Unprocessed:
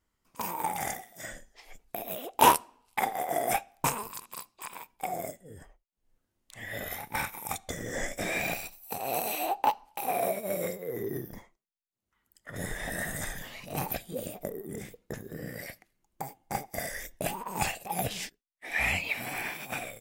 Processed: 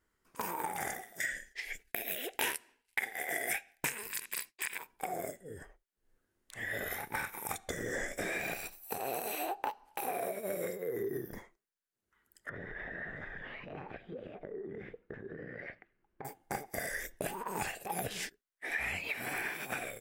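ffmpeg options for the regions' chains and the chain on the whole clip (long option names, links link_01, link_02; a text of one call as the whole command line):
ffmpeg -i in.wav -filter_complex "[0:a]asettb=1/sr,asplit=3[link_01][link_02][link_03];[link_01]atrim=end=1.204[link_04];[link_02]atrim=start=1.2:end=4.78,asetpts=PTS-STARTPTS,afade=type=in:duration=0.004:curve=qsin,afade=type=out:start_time=3.576:duration=0.004:curve=qsin,agate=range=-33dB:threshold=-58dB:ratio=3:release=100:detection=peak,highshelf=frequency=1500:width_type=q:width=3:gain=8.5[link_05];[link_03]atrim=start=4.776[link_06];[link_04][link_05]acrossfade=duration=0.004:curve1=hsin:curve2=qsin[link_07];[link_07][link_06]acrossfade=duration=0.004:curve1=qsin:curve2=hsin,asettb=1/sr,asplit=3[link_08][link_09][link_10];[link_08]atrim=end=12.494[link_11];[link_09]atrim=start=12.49:end=16.25,asetpts=PTS-STARTPTS,afade=type=in:duration=0.004:curve=qsin,afade=type=out:start_time=3.756:duration=0.004:curve=qsin,lowpass=frequency=2800:width=0.5412,lowpass=frequency=2800:width=1.3066,acompressor=threshold=-42dB:ratio=5:attack=3.2:release=140:knee=1:detection=peak[link_12];[link_10]atrim=start=16.246[link_13];[link_11][link_12]acrossfade=duration=0.004:curve1=hsin:curve2=qsin[link_14];[link_14][link_13]acrossfade=duration=0.004:curve1=qsin:curve2=hsin,equalizer=frequency=400:width_type=o:width=0.67:gain=8,equalizer=frequency=1600:width_type=o:width=0.67:gain=9,equalizer=frequency=10000:width_type=o:width=0.67:gain=3,acompressor=threshold=-31dB:ratio=5,volume=-2.5dB" out.wav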